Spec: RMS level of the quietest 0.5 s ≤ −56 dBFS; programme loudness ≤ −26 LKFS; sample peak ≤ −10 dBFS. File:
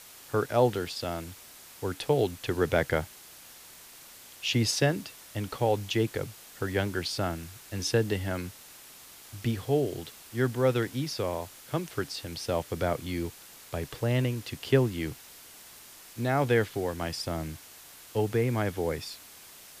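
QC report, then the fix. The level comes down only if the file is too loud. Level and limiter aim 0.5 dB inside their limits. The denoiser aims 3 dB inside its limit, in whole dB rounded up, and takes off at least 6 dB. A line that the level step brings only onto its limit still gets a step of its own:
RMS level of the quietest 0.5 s −50 dBFS: out of spec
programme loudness −30.0 LKFS: in spec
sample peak −10.5 dBFS: in spec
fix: broadband denoise 9 dB, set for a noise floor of −50 dBFS

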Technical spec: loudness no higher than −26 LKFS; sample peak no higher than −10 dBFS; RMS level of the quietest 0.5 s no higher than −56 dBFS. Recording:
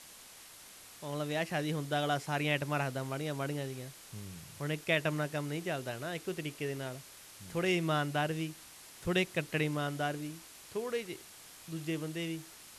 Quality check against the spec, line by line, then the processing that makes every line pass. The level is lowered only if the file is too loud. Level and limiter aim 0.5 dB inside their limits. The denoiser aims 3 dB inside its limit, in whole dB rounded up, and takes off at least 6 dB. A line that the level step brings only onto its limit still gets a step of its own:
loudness −35.0 LKFS: in spec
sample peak −16.0 dBFS: in spec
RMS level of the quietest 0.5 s −53 dBFS: out of spec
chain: broadband denoise 6 dB, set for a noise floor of −53 dBFS

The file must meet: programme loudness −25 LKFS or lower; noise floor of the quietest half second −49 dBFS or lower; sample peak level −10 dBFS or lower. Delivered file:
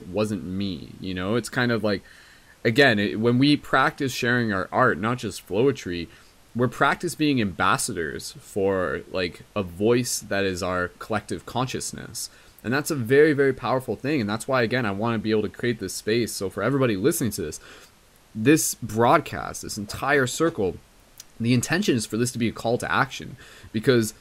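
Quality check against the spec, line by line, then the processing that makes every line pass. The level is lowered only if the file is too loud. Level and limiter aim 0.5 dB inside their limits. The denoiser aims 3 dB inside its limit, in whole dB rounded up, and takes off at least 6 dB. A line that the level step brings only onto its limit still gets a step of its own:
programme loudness −24.0 LKFS: out of spec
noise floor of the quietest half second −55 dBFS: in spec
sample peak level −6.0 dBFS: out of spec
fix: level −1.5 dB
brickwall limiter −10.5 dBFS

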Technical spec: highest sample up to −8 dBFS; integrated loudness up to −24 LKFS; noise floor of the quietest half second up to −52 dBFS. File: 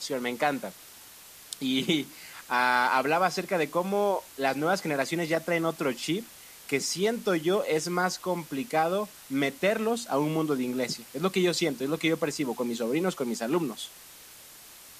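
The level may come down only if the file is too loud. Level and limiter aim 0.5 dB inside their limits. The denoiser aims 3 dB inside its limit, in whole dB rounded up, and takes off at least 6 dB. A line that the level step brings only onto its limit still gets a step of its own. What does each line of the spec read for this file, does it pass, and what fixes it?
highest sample −11.0 dBFS: in spec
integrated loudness −28.0 LKFS: in spec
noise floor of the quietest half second −49 dBFS: out of spec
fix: broadband denoise 6 dB, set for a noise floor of −49 dBFS

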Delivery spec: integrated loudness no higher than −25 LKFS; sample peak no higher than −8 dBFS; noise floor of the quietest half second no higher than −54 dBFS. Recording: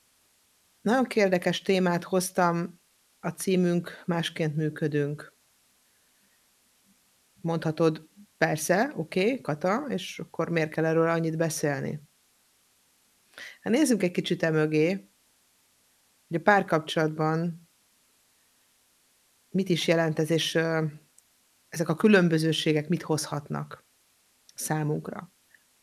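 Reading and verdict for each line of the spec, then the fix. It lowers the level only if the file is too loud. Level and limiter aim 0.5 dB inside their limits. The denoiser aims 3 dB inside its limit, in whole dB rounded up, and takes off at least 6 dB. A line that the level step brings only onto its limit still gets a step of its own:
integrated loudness −27.0 LKFS: in spec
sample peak −4.5 dBFS: out of spec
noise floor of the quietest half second −66 dBFS: in spec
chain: brickwall limiter −8.5 dBFS

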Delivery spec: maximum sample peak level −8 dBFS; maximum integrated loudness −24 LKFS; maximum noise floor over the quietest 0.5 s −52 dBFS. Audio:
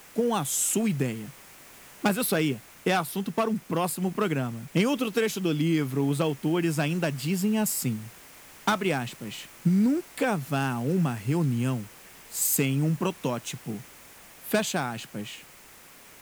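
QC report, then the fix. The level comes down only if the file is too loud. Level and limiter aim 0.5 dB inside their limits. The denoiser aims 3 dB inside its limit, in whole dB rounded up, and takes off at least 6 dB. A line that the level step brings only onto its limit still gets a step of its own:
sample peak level −10.5 dBFS: in spec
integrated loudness −27.0 LKFS: in spec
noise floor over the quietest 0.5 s −51 dBFS: out of spec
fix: broadband denoise 6 dB, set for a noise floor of −51 dBFS

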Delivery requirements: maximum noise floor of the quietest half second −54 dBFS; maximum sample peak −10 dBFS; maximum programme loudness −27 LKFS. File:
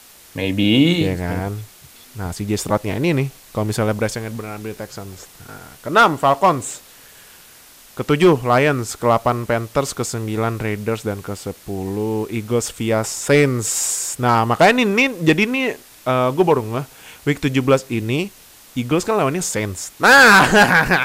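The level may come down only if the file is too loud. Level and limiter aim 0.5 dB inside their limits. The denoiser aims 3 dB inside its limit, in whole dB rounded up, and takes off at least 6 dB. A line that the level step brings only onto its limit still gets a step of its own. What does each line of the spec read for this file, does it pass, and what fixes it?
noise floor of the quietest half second −45 dBFS: out of spec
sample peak −2.5 dBFS: out of spec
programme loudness −17.5 LKFS: out of spec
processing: level −10 dB

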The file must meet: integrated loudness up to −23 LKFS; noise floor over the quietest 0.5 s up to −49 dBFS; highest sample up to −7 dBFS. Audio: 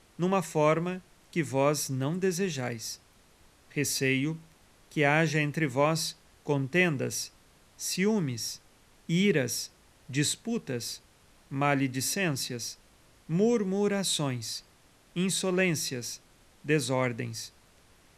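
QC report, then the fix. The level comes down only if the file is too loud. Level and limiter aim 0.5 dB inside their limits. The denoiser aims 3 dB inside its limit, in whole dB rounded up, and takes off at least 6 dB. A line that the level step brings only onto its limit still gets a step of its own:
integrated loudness −29.0 LKFS: in spec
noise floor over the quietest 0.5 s −60 dBFS: in spec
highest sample −9.5 dBFS: in spec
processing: no processing needed

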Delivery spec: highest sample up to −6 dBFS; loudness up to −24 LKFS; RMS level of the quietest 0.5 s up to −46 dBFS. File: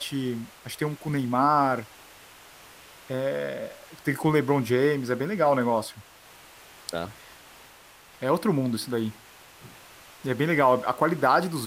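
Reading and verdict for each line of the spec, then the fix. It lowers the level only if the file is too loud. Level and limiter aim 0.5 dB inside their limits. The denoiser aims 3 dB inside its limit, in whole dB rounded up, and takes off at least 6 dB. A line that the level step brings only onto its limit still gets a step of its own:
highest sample −8.0 dBFS: in spec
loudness −25.5 LKFS: in spec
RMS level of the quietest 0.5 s −52 dBFS: in spec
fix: no processing needed

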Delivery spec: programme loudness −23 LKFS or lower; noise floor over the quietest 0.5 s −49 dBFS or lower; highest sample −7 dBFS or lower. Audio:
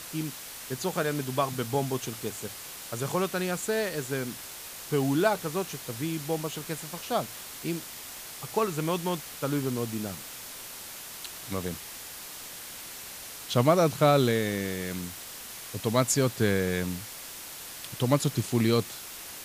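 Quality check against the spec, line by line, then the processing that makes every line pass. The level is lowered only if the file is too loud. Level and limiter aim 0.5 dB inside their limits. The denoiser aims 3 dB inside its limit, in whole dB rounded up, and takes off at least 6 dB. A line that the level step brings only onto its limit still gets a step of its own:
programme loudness −30.0 LKFS: in spec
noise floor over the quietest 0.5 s −42 dBFS: out of spec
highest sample −8.5 dBFS: in spec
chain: broadband denoise 10 dB, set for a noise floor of −42 dBFS

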